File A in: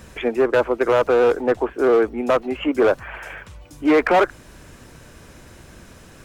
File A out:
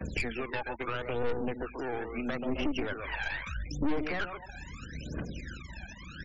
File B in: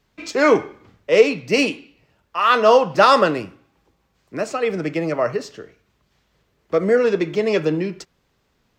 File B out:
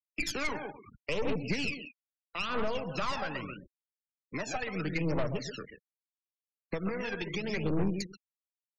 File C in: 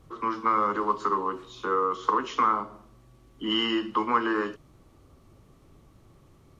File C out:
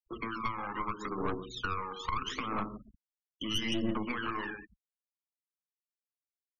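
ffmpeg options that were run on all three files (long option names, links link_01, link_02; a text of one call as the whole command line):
ffmpeg -i in.wav -filter_complex "[0:a]acompressor=threshold=-31dB:ratio=2.5,highpass=57,asplit=2[link_01][link_02];[link_02]adelay=132,lowpass=frequency=1800:poles=1,volume=-6.5dB,asplit=2[link_03][link_04];[link_04]adelay=132,lowpass=frequency=1800:poles=1,volume=0.25,asplit=2[link_05][link_06];[link_06]adelay=132,lowpass=frequency=1800:poles=1,volume=0.25[link_07];[link_01][link_03][link_05][link_07]amix=inputs=4:normalize=0,agate=range=-10dB:threshold=-51dB:ratio=16:detection=peak,aphaser=in_gain=1:out_gain=1:delay=1.3:decay=0.77:speed=0.77:type=triangular,adynamicequalizer=threshold=0.002:dfrequency=110:dqfactor=6.6:tfrequency=110:tqfactor=6.6:attack=5:release=100:ratio=0.375:range=2:mode=cutabove:tftype=bell,aresample=16000,aeval=exprs='val(0)*gte(abs(val(0)),0.00562)':channel_layout=same,aresample=44100,equalizer=frequency=100:width_type=o:width=0.67:gain=-8,equalizer=frequency=400:width_type=o:width=0.67:gain=-4,equalizer=frequency=1000:width_type=o:width=0.67:gain=-5,equalizer=frequency=2500:width_type=o:width=0.67:gain=3,aeval=exprs='(tanh(17.8*val(0)+0.7)-tanh(0.7))/17.8':channel_layout=same,afftfilt=real='re*gte(hypot(re,im),0.00562)':imag='im*gte(hypot(re,im),0.00562)':win_size=1024:overlap=0.75,acrossover=split=180[link_08][link_09];[link_09]acompressor=threshold=-36dB:ratio=3[link_10];[link_08][link_10]amix=inputs=2:normalize=0,volume=3.5dB" out.wav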